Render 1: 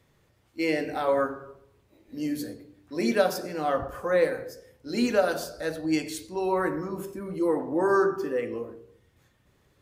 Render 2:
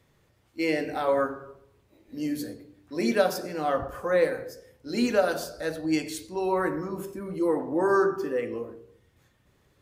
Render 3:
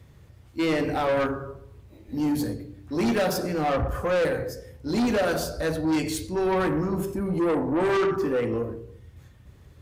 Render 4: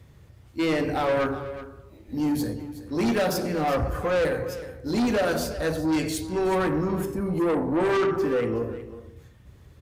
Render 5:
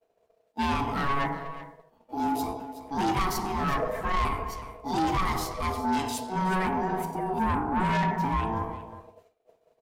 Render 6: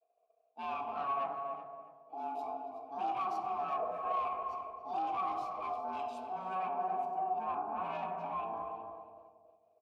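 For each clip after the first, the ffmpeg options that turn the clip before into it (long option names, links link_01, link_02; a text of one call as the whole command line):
ffmpeg -i in.wav -af anull out.wav
ffmpeg -i in.wav -af "equalizer=frequency=71:width=0.55:gain=14.5,asoftclip=type=tanh:threshold=-25.5dB,volume=5.5dB" out.wav
ffmpeg -i in.wav -af "aecho=1:1:370:0.188" out.wav
ffmpeg -i in.wav -af "aeval=exprs='val(0)*sin(2*PI*560*n/s)':channel_layout=same,agate=range=-33dB:threshold=-42dB:ratio=3:detection=peak" out.wav
ffmpeg -i in.wav -filter_complex "[0:a]asplit=3[link_01][link_02][link_03];[link_01]bandpass=frequency=730:width_type=q:width=8,volume=0dB[link_04];[link_02]bandpass=frequency=1090:width_type=q:width=8,volume=-6dB[link_05];[link_03]bandpass=frequency=2440:width_type=q:width=8,volume=-9dB[link_06];[link_04][link_05][link_06]amix=inputs=3:normalize=0,asplit=2[link_07][link_08];[link_08]adelay=278,lowpass=frequency=850:poles=1,volume=-3dB,asplit=2[link_09][link_10];[link_10]adelay=278,lowpass=frequency=850:poles=1,volume=0.34,asplit=2[link_11][link_12];[link_12]adelay=278,lowpass=frequency=850:poles=1,volume=0.34,asplit=2[link_13][link_14];[link_14]adelay=278,lowpass=frequency=850:poles=1,volume=0.34[link_15];[link_09][link_11][link_13][link_15]amix=inputs=4:normalize=0[link_16];[link_07][link_16]amix=inputs=2:normalize=0" out.wav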